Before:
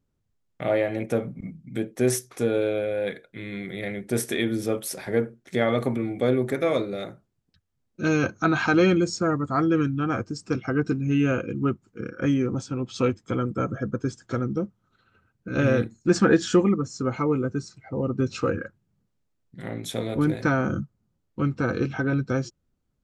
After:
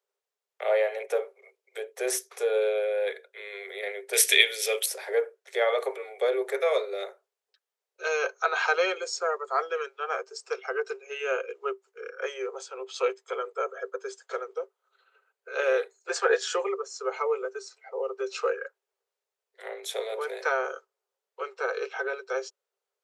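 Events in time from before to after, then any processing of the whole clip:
4.13–4.86 resonant high shelf 1700 Hz +11.5 dB, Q 1.5
12.41–16.35 notch 5500 Hz
whole clip: Chebyshev high-pass 390 Hz, order 10

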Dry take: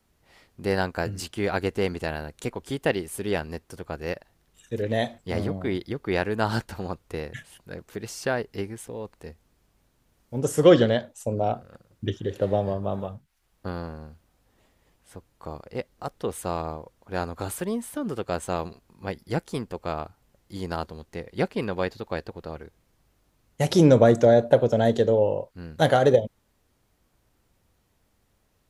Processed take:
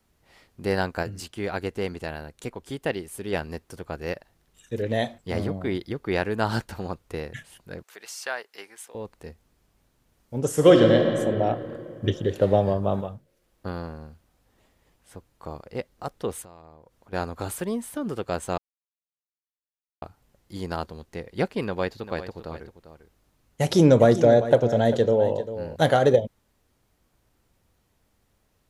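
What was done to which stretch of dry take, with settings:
1.03–3.33 gain -3.5 dB
7.83–8.95 HPF 890 Hz
10.48–11.14 reverb throw, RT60 2.7 s, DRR 2 dB
12.04–13.01 gain +4 dB
16.42–17.13 compressor 3:1, threshold -50 dBFS
18.58–20.02 mute
21.64–25.76 echo 0.396 s -12.5 dB

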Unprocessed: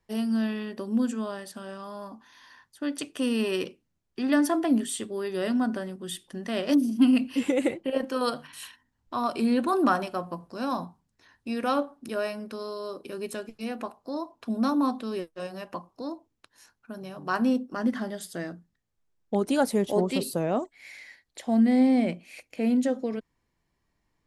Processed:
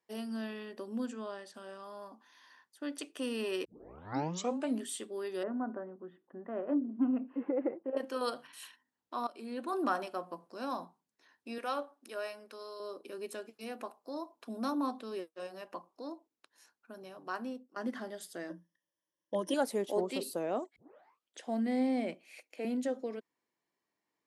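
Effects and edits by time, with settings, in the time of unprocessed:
1.06–1.54 LPF 7000 Hz
3.65 tape start 1.14 s
5.43–7.97 LPF 1400 Hz 24 dB/oct
9.27–9.99 fade in, from -15 dB
11.58–12.8 HPF 590 Hz 6 dB/oct
13.53–14.72 high shelf 8600 Hz +7 dB
17.08–17.76 fade out, to -19.5 dB
18.49–19.54 ripple EQ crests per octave 1.2, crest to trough 17 dB
20.76 tape start 0.70 s
22.14–22.65 HPF 270 Hz
whole clip: Chebyshev high-pass 340 Hz, order 2; gain -6.5 dB

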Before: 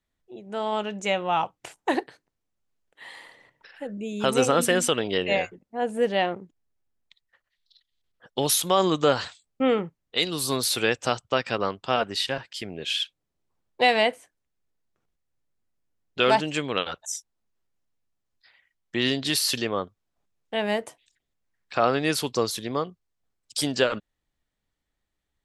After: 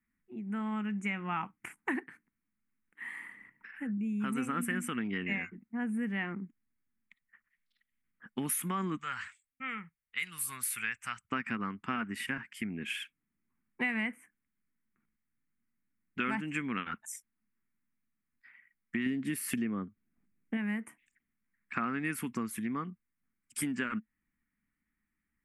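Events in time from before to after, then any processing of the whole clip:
8.97–11.29 passive tone stack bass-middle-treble 10-0-10
19.06–20.57 resonant low shelf 730 Hz +6 dB, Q 1.5
whole clip: EQ curve 140 Hz 0 dB, 220 Hz +12 dB, 570 Hz -21 dB, 1200 Hz -1 dB, 2200 Hz +4 dB, 4000 Hz -26 dB, 6300 Hz -16 dB, 9500 Hz -2 dB; compressor 4:1, threshold -30 dBFS; low shelf 210 Hz -6.5 dB

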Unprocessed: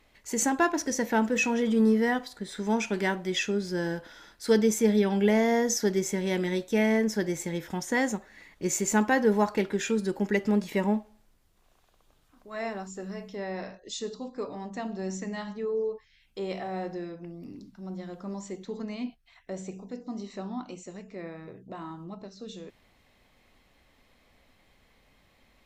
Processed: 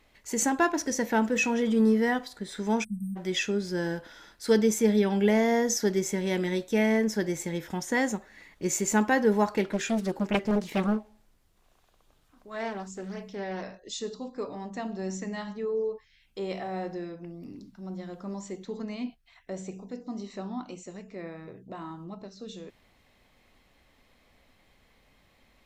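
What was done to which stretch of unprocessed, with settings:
2.84–3.16 spectral delete 220–8000 Hz
9.64–13.63 Doppler distortion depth 0.96 ms

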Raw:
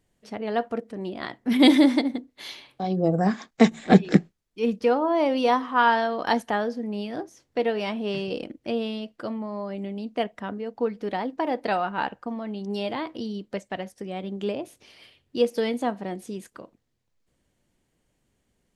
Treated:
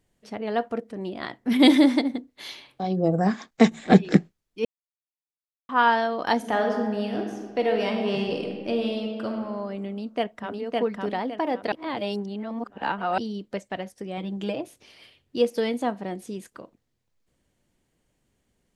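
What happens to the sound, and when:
4.65–5.69 mute
6.36–9.36 reverb throw, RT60 1.6 s, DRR 2 dB
9.87–10.59 echo throw 0.56 s, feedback 30%, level -1 dB
11.72–13.18 reverse
14.17–14.61 comb 6.2 ms

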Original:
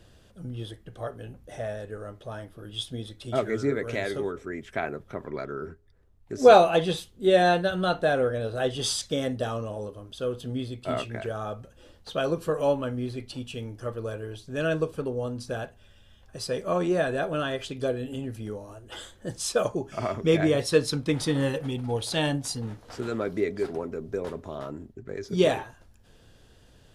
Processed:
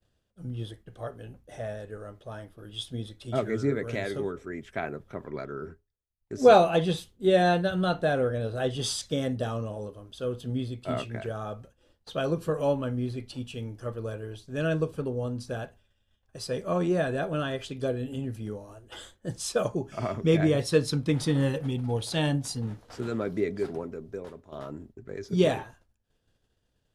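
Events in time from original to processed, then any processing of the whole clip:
23.7–24.52 fade out, to -9.5 dB
whole clip: expander -44 dBFS; dynamic EQ 150 Hz, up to +6 dB, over -39 dBFS, Q 0.79; gain -3 dB

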